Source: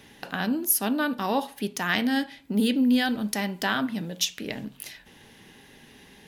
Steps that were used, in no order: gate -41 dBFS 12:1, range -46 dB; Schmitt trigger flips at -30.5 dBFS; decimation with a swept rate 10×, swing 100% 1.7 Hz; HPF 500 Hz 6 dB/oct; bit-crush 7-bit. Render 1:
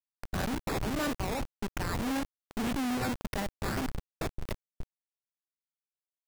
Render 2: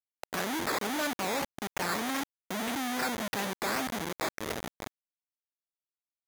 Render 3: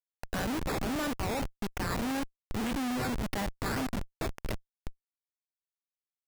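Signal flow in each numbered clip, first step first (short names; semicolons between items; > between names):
HPF > decimation with a swept rate > Schmitt trigger > bit-crush > gate; Schmitt trigger > decimation with a swept rate > gate > HPF > bit-crush; HPF > bit-crush > gate > decimation with a swept rate > Schmitt trigger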